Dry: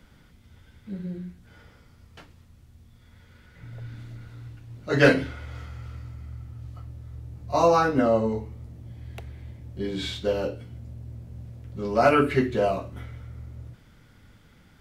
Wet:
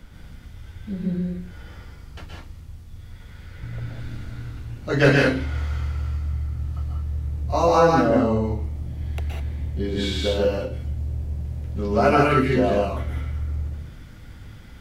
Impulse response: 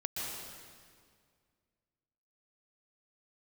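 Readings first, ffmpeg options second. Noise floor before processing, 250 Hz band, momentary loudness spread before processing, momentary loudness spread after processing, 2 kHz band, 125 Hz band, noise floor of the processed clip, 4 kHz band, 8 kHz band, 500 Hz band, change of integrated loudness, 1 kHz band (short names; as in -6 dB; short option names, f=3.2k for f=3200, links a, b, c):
-55 dBFS, +4.5 dB, 22 LU, 24 LU, +2.5 dB, +8.5 dB, -43 dBFS, +4.5 dB, +4.0 dB, +3.0 dB, +1.0 dB, +3.0 dB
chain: -filter_complex "[0:a]asplit=2[a][b];[b]acompressor=threshold=-33dB:ratio=6,volume=2dB[c];[a][c]amix=inputs=2:normalize=0,lowshelf=f=68:g=10.5[d];[1:a]atrim=start_sample=2205,afade=t=out:st=0.26:d=0.01,atrim=end_sample=11907[e];[d][e]afir=irnorm=-1:irlink=0"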